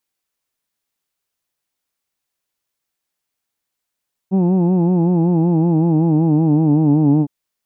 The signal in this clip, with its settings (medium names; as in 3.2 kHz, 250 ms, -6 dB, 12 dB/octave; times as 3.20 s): formant vowel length 2.96 s, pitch 184 Hz, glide -4 st, F1 270 Hz, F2 840 Hz, F3 2.6 kHz